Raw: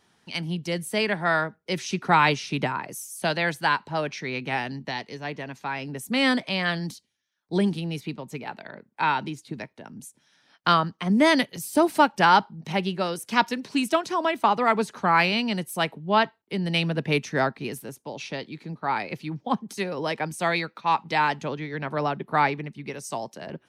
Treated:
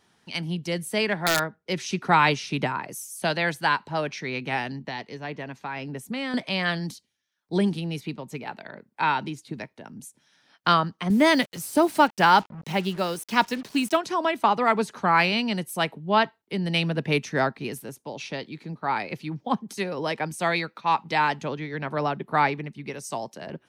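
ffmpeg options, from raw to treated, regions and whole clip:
ffmpeg -i in.wav -filter_complex "[0:a]asettb=1/sr,asplit=3[link_01][link_02][link_03];[link_01]atrim=end=1.084[link_04];[link_02]atrim=start=1.08:end=1.8,asetpts=PTS-STARTPTS,afade=type=in:duration=0.004:curve=qsin,afade=type=out:start_time=0.716:duration=0.004:curve=qsin,adynamicsmooth=sensitivity=2:basefreq=7300,aeval=exprs='(mod(4.47*val(0)+1,2)-1)/4.47':channel_layout=same[link_05];[link_03]atrim=start=1.796[link_06];[link_04][link_05]acrossfade=duration=0.004:curve1=hsin:curve2=qsin[link_07];[link_07][link_06]acrossfade=duration=0.004:curve1=qsin:curve2=hsin,asettb=1/sr,asplit=3[link_08][link_09][link_10];[link_08]atrim=end=4.724[link_11];[link_09]atrim=start=4.72:end=6.34,asetpts=PTS-STARTPTS,afade=type=in:duration=0.004:curve=qsin,afade=type=out:start_time=1.616:duration=0.004:curve=qsin,highshelf=frequency=4700:gain=-7,acompressor=threshold=-27dB:ratio=6:attack=3.2:release=140:knee=1:detection=peak[link_12];[link_10]atrim=start=6.336[link_13];[link_11][link_12]acrossfade=duration=0.004:curve1=hsin:curve2=qsin[link_14];[link_14][link_13]acrossfade=duration=0.004:curve1=qsin:curve2=hsin,asettb=1/sr,asplit=3[link_15][link_16][link_17];[link_15]atrim=end=11.104[link_18];[link_16]atrim=start=11.1:end=13.97,asetpts=PTS-STARTPTS,afade=type=in:duration=0.004:curve=qsin,afade=type=out:start_time=2.866:duration=0.004:curve=qsin,highpass=frequency=45:width=0.5412,highpass=frequency=45:width=1.3066,acrusher=bits=6:mix=0:aa=0.5[link_19];[link_17]atrim=start=13.966[link_20];[link_18][link_19]acrossfade=duration=0.004:curve1=hsin:curve2=qsin[link_21];[link_21][link_20]acrossfade=duration=0.004:curve1=qsin:curve2=hsin" out.wav

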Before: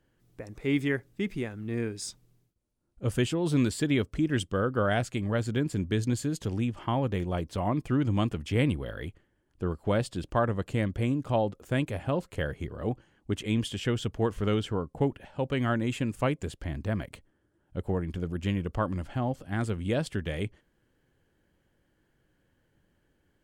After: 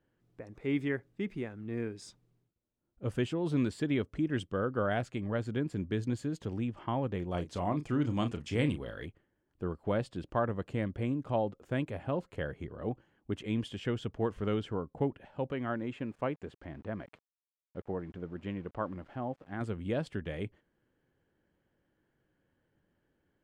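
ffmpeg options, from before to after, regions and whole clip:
ffmpeg -i in.wav -filter_complex "[0:a]asettb=1/sr,asplit=3[link_01][link_02][link_03];[link_01]atrim=end=7.314[link_04];[link_02]atrim=start=7.31:end=9.06,asetpts=PTS-STARTPTS,afade=type=in:duration=0.004:curve=qsin,afade=type=out:start_time=1.746:duration=0.004:curve=qsin,equalizer=frequency=6800:width_type=o:width=1.7:gain=11,asplit=2[link_05][link_06];[link_06]adelay=34,volume=-9.5dB[link_07];[link_05][link_07]amix=inputs=2:normalize=0,atrim=end_sample=77175[link_08];[link_03]atrim=start=9.056[link_09];[link_04][link_08]acrossfade=duration=0.004:curve1=hsin:curve2=qsin[link_10];[link_10][link_09]acrossfade=duration=0.004:curve1=qsin:curve2=hsin,asettb=1/sr,asplit=3[link_11][link_12][link_13];[link_11]atrim=end=15.524[link_14];[link_12]atrim=start=15.52:end=19.61,asetpts=PTS-STARTPTS,afade=type=in:duration=0.004:curve=qsin,afade=type=out:start_time=4.086:duration=0.004:curve=qsin,lowshelf=frequency=160:gain=-9,aeval=exprs='val(0)*gte(abs(val(0)),0.00316)':channel_layout=same,lowpass=frequency=2200:poles=1[link_15];[link_13]atrim=start=19.606[link_16];[link_14][link_15]acrossfade=duration=0.004:curve1=hsin:curve2=qsin[link_17];[link_17][link_16]acrossfade=duration=0.004:curve1=qsin:curve2=hsin,lowpass=frequency=2100:poles=1,lowshelf=frequency=76:gain=-9.5,volume=-3.5dB" out.wav

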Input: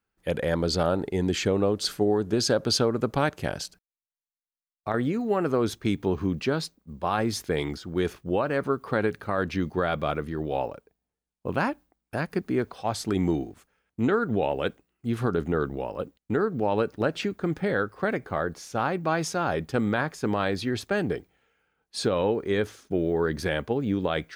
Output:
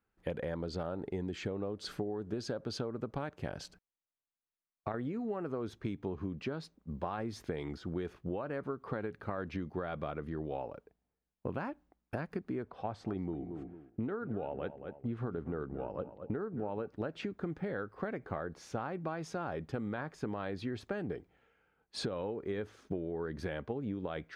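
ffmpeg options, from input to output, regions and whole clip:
ffmpeg -i in.wav -filter_complex "[0:a]asettb=1/sr,asplit=3[link_01][link_02][link_03];[link_01]atrim=end=12.634[link_04];[link_02]atrim=start=12.63:end=16.87,asetpts=PTS-STARTPTS,afade=type=in:duration=0.004:curve=qsin,afade=type=out:start_time=4.236:duration=0.004:curve=qsin,aemphasis=mode=reproduction:type=75kf,asplit=2[link_05][link_06];[link_06]adelay=226,lowpass=frequency=2200:poles=1,volume=-15dB,asplit=2[link_07][link_08];[link_08]adelay=226,lowpass=frequency=2200:poles=1,volume=0.22[link_09];[link_05][link_07][link_09]amix=inputs=3:normalize=0,atrim=end_sample=186984[link_10];[link_03]atrim=start=16.866[link_11];[link_04][link_10]acrossfade=duration=0.004:curve1=hsin:curve2=qsin[link_12];[link_12][link_11]acrossfade=duration=0.004:curve1=qsin:curve2=hsin,lowpass=frequency=1800:poles=1,acompressor=threshold=-35dB:ratio=10,volume=1dB" out.wav

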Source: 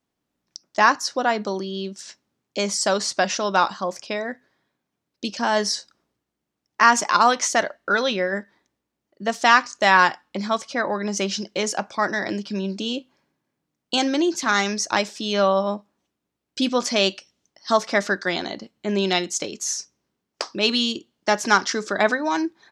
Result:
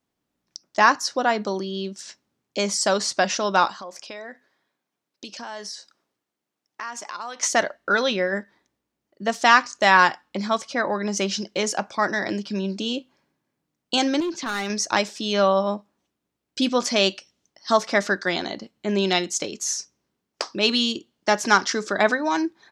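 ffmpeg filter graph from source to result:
ffmpeg -i in.wav -filter_complex "[0:a]asettb=1/sr,asplit=3[link_01][link_02][link_03];[link_01]atrim=end=3.704[link_04];[link_02]atrim=start=3.7:end=7.43,asetpts=PTS-STARTPTS,afade=type=in:duration=0.004:curve=qsin,afade=type=out:start_time=3.726:duration=0.004:curve=qsin,highpass=frequency=390:poles=1,acompressor=threshold=-35dB:ratio=3:attack=3.2:release=140:knee=1:detection=peak[link_05];[link_03]atrim=start=7.426[link_06];[link_04][link_05]acrossfade=duration=0.004:curve1=hsin:curve2=qsin[link_07];[link_07][link_06]acrossfade=duration=0.004:curve1=qsin:curve2=hsin,asettb=1/sr,asplit=3[link_08][link_09][link_10];[link_08]atrim=end=14.204[link_11];[link_09]atrim=start=14.2:end=14.7,asetpts=PTS-STARTPTS,afade=type=in:duration=0.004:curve=qsin,afade=type=out:start_time=0.496:duration=0.004:curve=qsin,lowpass=4500,asoftclip=type=hard:threshold=-18.5dB,acompressor=threshold=-27dB:ratio=2:attack=3.2:release=140:knee=1:detection=peak[link_12];[link_10]atrim=start=14.696[link_13];[link_11][link_12]acrossfade=duration=0.004:curve1=hsin:curve2=qsin[link_14];[link_14][link_13]acrossfade=duration=0.004:curve1=qsin:curve2=hsin" out.wav

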